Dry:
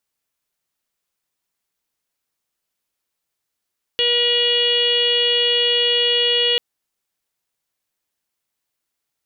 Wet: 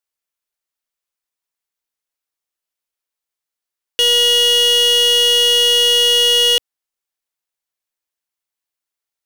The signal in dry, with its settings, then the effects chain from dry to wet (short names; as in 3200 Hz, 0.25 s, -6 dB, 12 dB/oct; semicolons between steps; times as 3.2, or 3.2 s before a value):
steady additive tone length 2.59 s, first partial 480 Hz, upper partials -19/-17/-7.5/-9.5/5/0.5/-17/-8 dB, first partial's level -22 dB
bell 140 Hz -9.5 dB 2.1 oct; sample leveller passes 3